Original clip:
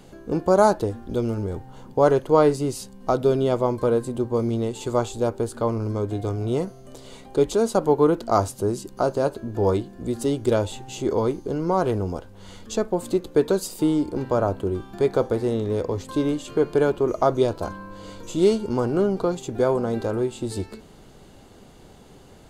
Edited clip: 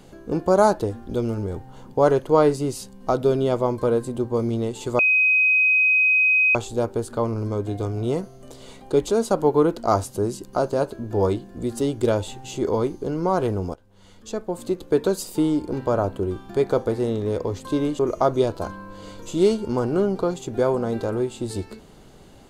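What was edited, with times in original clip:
0:04.99: insert tone 2,520 Hz −14.5 dBFS 1.56 s
0:12.18–0:13.53: fade in, from −15 dB
0:16.43–0:17.00: remove

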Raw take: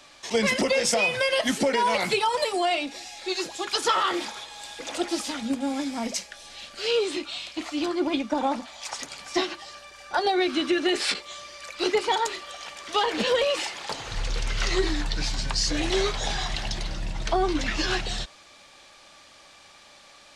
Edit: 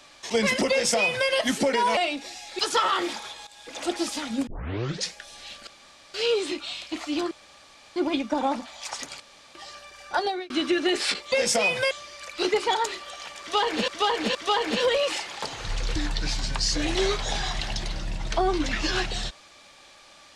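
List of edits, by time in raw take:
0:00.70–0:01.29: duplicate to 0:11.32
0:01.97–0:02.67: remove
0:03.29–0:03.71: remove
0:04.59–0:04.99: fade in, from −14.5 dB
0:05.59: tape start 0.67 s
0:06.79: splice in room tone 0.47 s
0:07.96: splice in room tone 0.65 s
0:09.20–0:09.55: fill with room tone
0:10.17–0:10.50: fade out
0:12.82–0:13.29: repeat, 3 plays
0:14.43–0:14.91: remove

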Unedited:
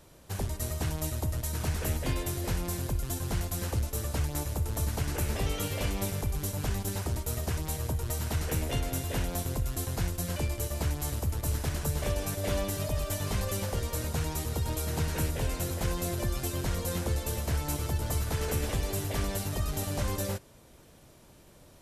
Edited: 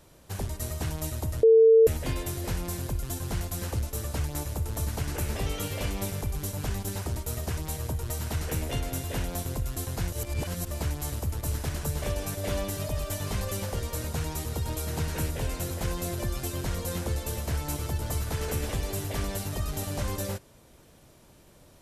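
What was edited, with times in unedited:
0:01.43–0:01.87: beep over 449 Hz −13 dBFS
0:10.12–0:10.71: reverse

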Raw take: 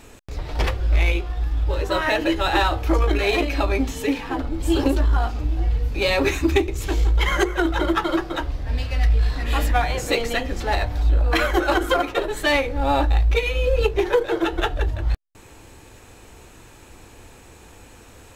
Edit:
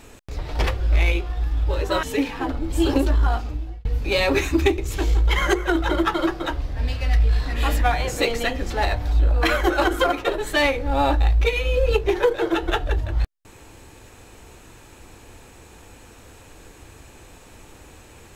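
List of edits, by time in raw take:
0:02.03–0:03.93: remove
0:05.24–0:05.75: fade out

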